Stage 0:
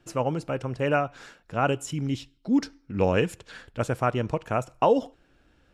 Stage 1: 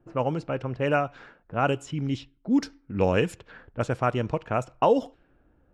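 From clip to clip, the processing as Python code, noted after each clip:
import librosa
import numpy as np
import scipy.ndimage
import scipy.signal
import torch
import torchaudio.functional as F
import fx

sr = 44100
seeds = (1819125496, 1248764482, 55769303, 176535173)

y = fx.env_lowpass(x, sr, base_hz=920.0, full_db=-20.0)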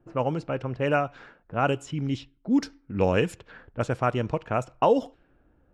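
y = x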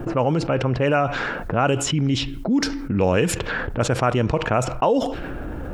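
y = fx.env_flatten(x, sr, amount_pct=70)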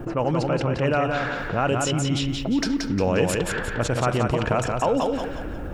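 y = fx.echo_feedback(x, sr, ms=177, feedback_pct=39, wet_db=-4.0)
y = F.gain(torch.from_numpy(y), -3.5).numpy()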